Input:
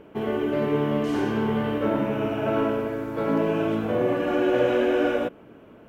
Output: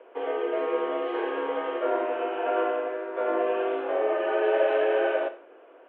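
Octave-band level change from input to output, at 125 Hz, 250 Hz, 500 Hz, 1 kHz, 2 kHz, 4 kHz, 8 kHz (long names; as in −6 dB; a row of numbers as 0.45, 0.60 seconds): below −35 dB, −11.0 dB, −1.0 dB, +1.0 dB, −1.0 dB, −4.0 dB, can't be measured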